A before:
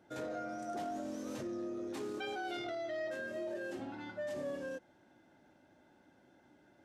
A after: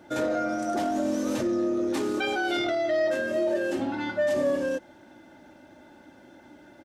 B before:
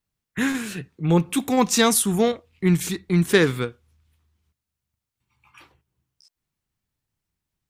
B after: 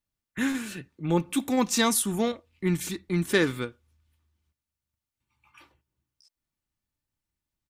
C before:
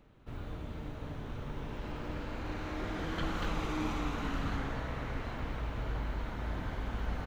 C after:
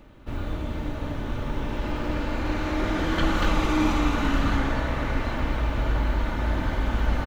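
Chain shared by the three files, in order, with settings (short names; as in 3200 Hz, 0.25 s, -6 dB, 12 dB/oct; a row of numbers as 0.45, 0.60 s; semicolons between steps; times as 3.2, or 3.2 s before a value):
comb 3.4 ms, depth 33%; match loudness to -27 LUFS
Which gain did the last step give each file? +13.0, -5.5, +11.0 dB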